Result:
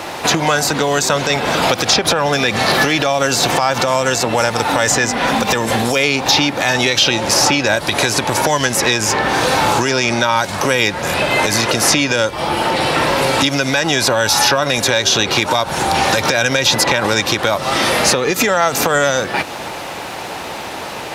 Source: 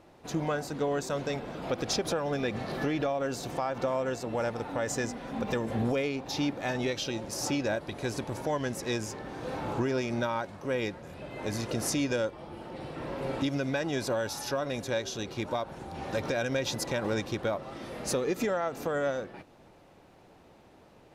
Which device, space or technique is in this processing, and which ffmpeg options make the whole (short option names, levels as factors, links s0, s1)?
mastering chain: -filter_complex "[0:a]asettb=1/sr,asplit=3[s0][s1][s2];[s0]atrim=end=9.834[s3];[s1]atrim=start=9.83:end=10.37,asetpts=PTS-STARTPTS,afade=t=in:d=0.004:c=qsin,afade=t=out:st=0.536:d=0.004:c=qsin,lowpass=10000[s4];[s2]atrim=start=10.366[s5];[s3][s4]acrossfade=d=0.004:c1=hsin:c2=qsin[s6];[s6][s5]acrossfade=d=0.004:c1=qsin:c2=hsin,highpass=49,equalizer=f=880:t=o:w=0.33:g=2.5,acrossover=split=180|4100[s7][s8][s9];[s7]acompressor=threshold=0.00562:ratio=4[s10];[s8]acompressor=threshold=0.00891:ratio=4[s11];[s9]acompressor=threshold=0.00158:ratio=4[s12];[s10][s11][s12]amix=inputs=3:normalize=0,acompressor=threshold=0.00501:ratio=1.5,tiltshelf=f=680:g=-8,alimiter=level_in=35.5:limit=0.891:release=50:level=0:latency=1,volume=0.891"